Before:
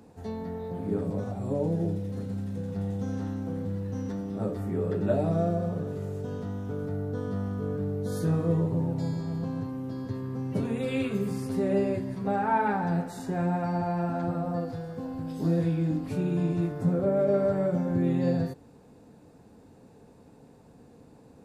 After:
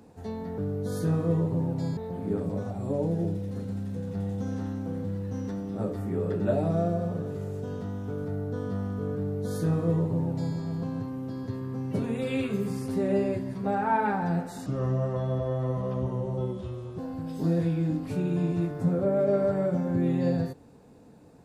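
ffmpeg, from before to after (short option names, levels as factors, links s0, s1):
-filter_complex "[0:a]asplit=5[s0][s1][s2][s3][s4];[s0]atrim=end=0.582[s5];[s1]atrim=start=7.778:end=9.172[s6];[s2]atrim=start=0.578:end=13.274[s7];[s3]atrim=start=13.27:end=14.99,asetpts=PTS-STARTPTS,asetrate=32634,aresample=44100[s8];[s4]atrim=start=14.986[s9];[s5][s6]acrossfade=d=0.004:c1=hsin:c2=hsin[s10];[s10][s7]acrossfade=d=0.004:c1=hsin:c2=hsin[s11];[s11][s8]acrossfade=d=0.004:c1=hsin:c2=hsin[s12];[s12][s9]acrossfade=d=0.004:c1=hsin:c2=hsin"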